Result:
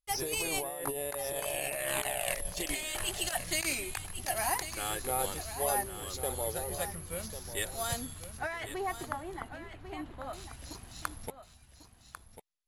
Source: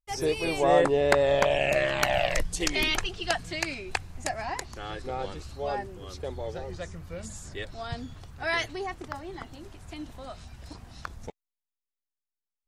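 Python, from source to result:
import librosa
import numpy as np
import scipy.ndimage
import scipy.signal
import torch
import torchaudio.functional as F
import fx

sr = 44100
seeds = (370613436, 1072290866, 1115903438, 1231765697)

y = fx.high_shelf(x, sr, hz=2500.0, db=10.0)
y = fx.over_compress(y, sr, threshold_db=-29.0, ratio=-1.0)
y = fx.dynamic_eq(y, sr, hz=890.0, q=0.88, threshold_db=-43.0, ratio=4.0, max_db=4)
y = (np.kron(scipy.signal.resample_poly(y, 1, 4), np.eye(4)[0]) * 4)[:len(y)]
y = fx.lowpass(y, sr, hz=fx.steps((0.0, 8400.0), (8.39, 2100.0), (10.33, 6500.0)), slope=12)
y = y + 10.0 ** (-11.0 / 20.0) * np.pad(y, (int(1096 * sr / 1000.0), 0))[:len(y)]
y = y * 10.0 ** (-7.5 / 20.0)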